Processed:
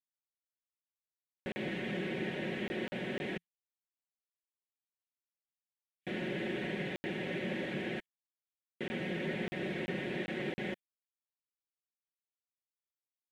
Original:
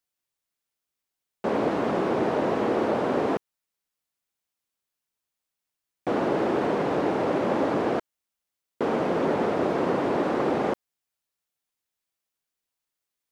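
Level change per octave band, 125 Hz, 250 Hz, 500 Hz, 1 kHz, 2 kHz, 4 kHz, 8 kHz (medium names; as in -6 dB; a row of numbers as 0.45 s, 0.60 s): -6.5 dB, -11.5 dB, -15.0 dB, -21.0 dB, -4.0 dB, -2.5 dB, no reading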